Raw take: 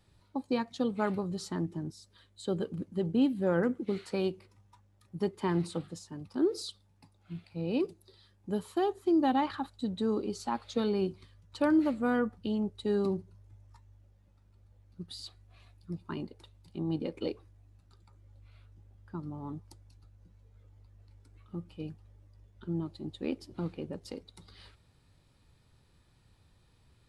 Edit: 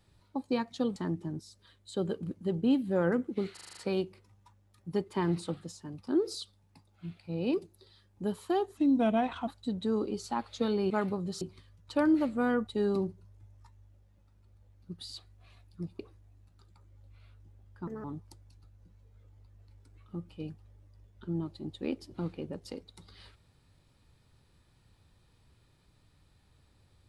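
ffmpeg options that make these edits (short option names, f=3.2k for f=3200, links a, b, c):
-filter_complex "[0:a]asplit=16[a][b][c][d][e][f][g][h][i][j][k][l][m][n][o][p];[a]atrim=end=0.962[q];[b]atrim=start=1.468:end=4.082[r];[c]atrim=start=4.038:end=4.082[s];[d]atrim=start=4.038:end=4.082[t];[e]atrim=start=4.038:end=4.082[u];[f]atrim=start=4.038:end=4.082[v];[g]atrim=start=4.038:end=4.082[w];[h]atrim=start=4.038:end=9.044[x];[i]atrim=start=9.04:end=9.63,asetpts=PTS-STARTPTS,asetrate=37044,aresample=44100[y];[j]atrim=start=9.626:end=11.062[z];[k]atrim=start=0.958:end=1.472[aa];[l]atrim=start=11.058:end=12.322[ab];[m]atrim=start=12.768:end=16.092[ac];[n]atrim=start=17.308:end=19.194[ad];[o]atrim=start=19.19:end=19.44,asetpts=PTS-STARTPTS,asetrate=65268,aresample=44100,atrim=end_sample=7449,asetpts=PTS-STARTPTS[ae];[p]atrim=start=19.436[af];[q][r]acrossfade=d=0.004:c1=hsin:c2=hsin[ag];[ag][s]acrossfade=d=0.004:c1=hsin:c2=hsin[ah];[ah][t]acrossfade=d=0.004:c1=hsin:c2=hsin[ai];[ai][u]acrossfade=d=0.004:c1=hsin:c2=hsin[aj];[aj][v]acrossfade=d=0.004:c1=hsin:c2=hsin[ak];[ak][w]acrossfade=d=0.004:c1=hsin:c2=hsin[al];[al][x]acrossfade=d=0.004:c1=hsin:c2=hsin[am];[am][y]acrossfade=d=0.004:c1=hsin:c2=hsin[an];[an][z]acrossfade=d=0.004:c1=hsin:c2=hsin[ao];[ao][aa]acrossfade=d=0.004:c1=hsin:c2=hsin[ap];[ap][ab]acrossfade=d=0.004:c1=hsin:c2=hsin[aq];[aq][ac]acrossfade=d=0.004:c1=hsin:c2=hsin[ar];[ar][ad]acrossfade=d=0.004:c1=hsin:c2=hsin[as];[as][ae]acrossfade=d=0.004:c1=hsin:c2=hsin[at];[at][af]acrossfade=d=0.004:c1=hsin:c2=hsin"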